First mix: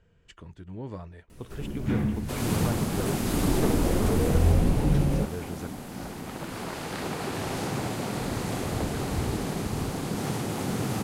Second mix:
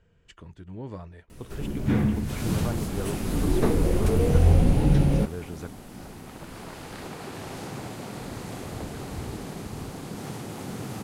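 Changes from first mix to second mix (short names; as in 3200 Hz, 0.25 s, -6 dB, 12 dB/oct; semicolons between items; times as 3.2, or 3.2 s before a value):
first sound +3.5 dB; second sound -6.0 dB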